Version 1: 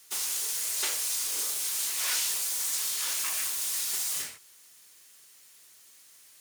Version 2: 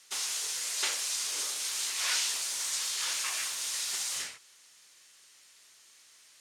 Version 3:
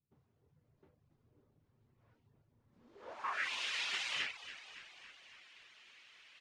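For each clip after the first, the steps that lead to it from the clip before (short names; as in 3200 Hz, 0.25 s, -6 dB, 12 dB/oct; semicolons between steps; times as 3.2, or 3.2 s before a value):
LPF 7100 Hz 12 dB/oct; low shelf 480 Hz -7.5 dB; gain +2 dB
low-pass sweep 130 Hz -> 2700 Hz, 2.67–3.54; frequency-shifting echo 0.28 s, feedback 60%, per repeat -61 Hz, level -13 dB; reverb removal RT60 0.51 s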